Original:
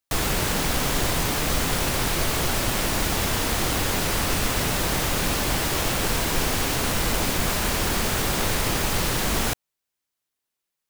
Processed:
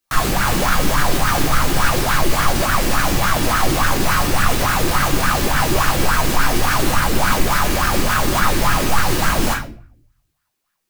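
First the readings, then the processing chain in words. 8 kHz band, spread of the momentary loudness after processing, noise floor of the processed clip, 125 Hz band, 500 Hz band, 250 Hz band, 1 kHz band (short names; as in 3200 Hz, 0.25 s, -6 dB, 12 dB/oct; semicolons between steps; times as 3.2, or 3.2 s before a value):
+2.5 dB, 1 LU, -73 dBFS, +6.0 dB, +5.5 dB, +6.5 dB, +10.0 dB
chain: bell 450 Hz -10 dB 0.95 oct; limiter -20.5 dBFS, peak gain reduction 8.5 dB; shoebox room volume 62 m³, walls mixed, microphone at 0.9 m; LFO bell 3.5 Hz 330–1500 Hz +16 dB; gain +4.5 dB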